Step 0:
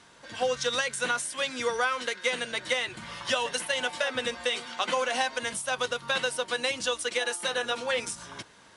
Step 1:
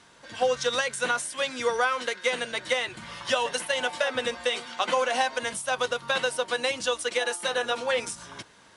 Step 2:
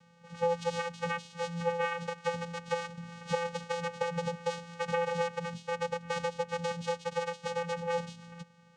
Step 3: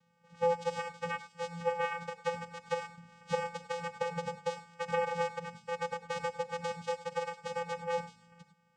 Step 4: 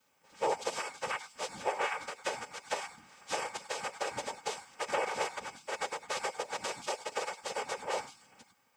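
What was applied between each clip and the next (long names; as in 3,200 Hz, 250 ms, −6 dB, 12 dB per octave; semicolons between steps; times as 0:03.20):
dynamic equaliser 690 Hz, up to +4 dB, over −36 dBFS, Q 0.71
channel vocoder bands 4, square 170 Hz; level −5.5 dB
reverb whose tail is shaped and stops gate 120 ms rising, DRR 6.5 dB; expander for the loud parts 1.5 to 1, over −46 dBFS
random phases in short frames; RIAA equalisation recording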